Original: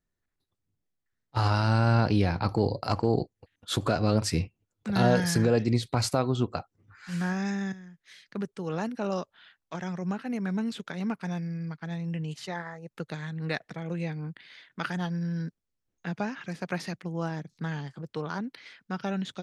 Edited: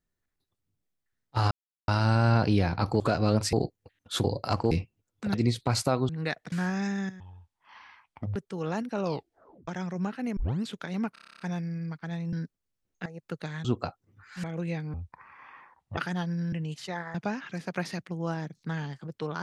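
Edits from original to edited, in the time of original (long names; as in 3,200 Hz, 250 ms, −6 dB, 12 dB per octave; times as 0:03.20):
0:01.51: splice in silence 0.37 s
0:02.63–0:03.10: swap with 0:03.81–0:04.34
0:04.97–0:05.61: remove
0:06.36–0:07.15: swap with 0:13.33–0:13.76
0:07.83–0:08.42: play speed 51%
0:09.08: tape stop 0.66 s
0:10.43: tape start 0.26 s
0:11.19: stutter 0.03 s, 10 plays
0:12.12–0:12.74: swap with 0:15.36–0:16.09
0:14.26–0:14.81: play speed 53%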